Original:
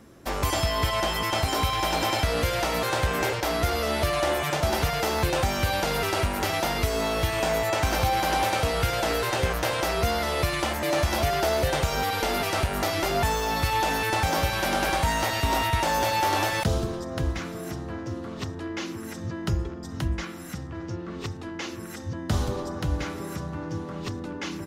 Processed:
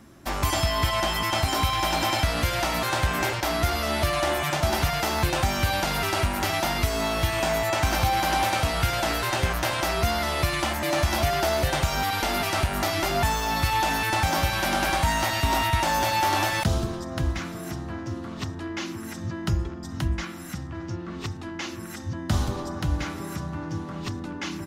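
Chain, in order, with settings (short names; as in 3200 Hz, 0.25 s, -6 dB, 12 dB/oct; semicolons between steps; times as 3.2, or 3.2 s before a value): bell 470 Hz -13 dB 0.3 oct; gain +1.5 dB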